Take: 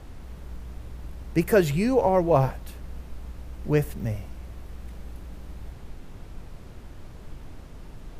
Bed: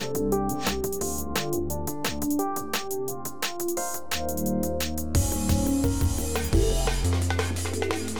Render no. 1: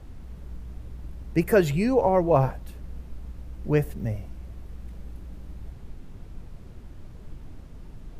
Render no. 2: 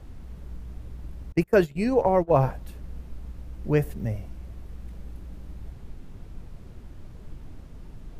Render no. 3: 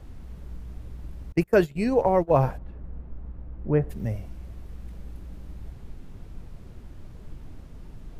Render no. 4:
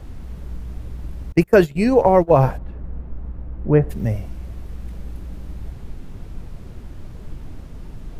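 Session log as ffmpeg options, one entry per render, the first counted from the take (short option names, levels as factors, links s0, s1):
-af "afftdn=nr=6:nf=-43"
-filter_complex "[0:a]asettb=1/sr,asplit=3[s0][s1][s2];[s0]atrim=end=1.324[s3];[s1]atrim=start=1.32:end=2.33,asetpts=PTS-STARTPTS,afade=t=in:d=0.004:c=qsin,afade=t=out:st=1.006:d=0.004:c=qsin,agate=range=0.0398:threshold=0.0631:ratio=16:release=100:detection=peak[s4];[s2]atrim=start=2.326[s5];[s3][s4]acrossfade=d=0.004:c1=hsin:c2=qsin[s6];[s6][s5]acrossfade=d=0.004:c1=qsin:c2=hsin"
-filter_complex "[0:a]asplit=3[s0][s1][s2];[s0]afade=t=out:st=2.57:d=0.02[s3];[s1]lowpass=1400,afade=t=in:st=2.57:d=0.02,afade=t=out:st=3.89:d=0.02[s4];[s2]afade=t=in:st=3.89:d=0.02[s5];[s3][s4][s5]amix=inputs=3:normalize=0"
-af "volume=2.37,alimiter=limit=0.708:level=0:latency=1"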